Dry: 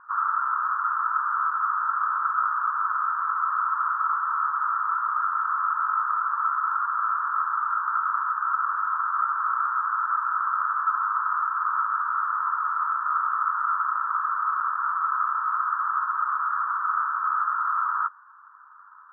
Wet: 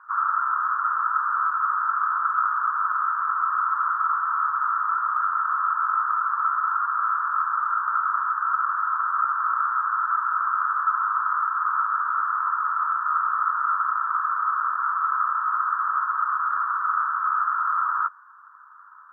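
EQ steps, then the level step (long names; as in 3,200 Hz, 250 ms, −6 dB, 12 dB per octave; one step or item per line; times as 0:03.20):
high-pass filter 890 Hz 12 dB per octave
+2.5 dB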